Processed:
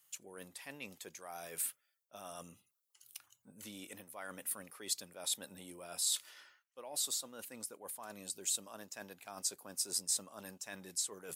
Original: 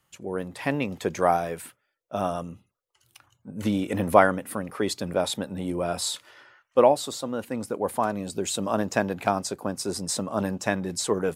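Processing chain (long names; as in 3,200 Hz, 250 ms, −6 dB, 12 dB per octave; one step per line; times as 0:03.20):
low-shelf EQ 130 Hz −9 dB
reversed playback
downward compressor 10 to 1, threshold −33 dBFS, peak gain reduction 22.5 dB
reversed playback
first-order pre-emphasis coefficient 0.9
level +4.5 dB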